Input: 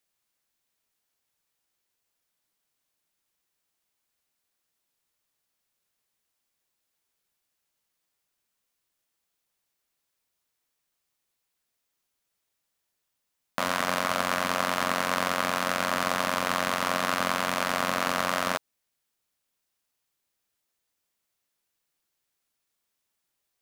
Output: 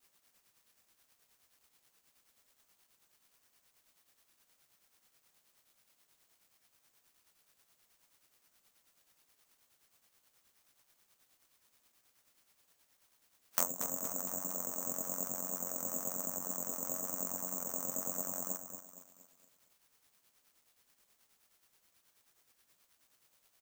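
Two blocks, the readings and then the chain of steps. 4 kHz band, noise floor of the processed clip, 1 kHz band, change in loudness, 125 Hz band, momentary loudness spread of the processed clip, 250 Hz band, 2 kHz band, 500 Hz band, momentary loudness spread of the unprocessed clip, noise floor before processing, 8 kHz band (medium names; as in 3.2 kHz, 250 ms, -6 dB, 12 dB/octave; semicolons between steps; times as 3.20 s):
-25.0 dB, -76 dBFS, -21.0 dB, -9.5 dB, -14.0 dB, 5 LU, -12.5 dB, -27.0 dB, -15.0 dB, 2 LU, -81 dBFS, 0.0 dB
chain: spectral levelling over time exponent 0.6; spectral noise reduction 11 dB; high-pass 250 Hz 6 dB/octave; low-pass that closes with the level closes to 500 Hz, closed at -22.5 dBFS; reverb removal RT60 0.54 s; treble shelf 6.4 kHz +10 dB; harmonic tremolo 9.4 Hz, depth 70%, crossover 900 Hz; vibrato 1 Hz 21 cents; feedback delay 232 ms, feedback 44%, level -9 dB; careless resampling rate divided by 6×, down none, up zero stuff; trim -7 dB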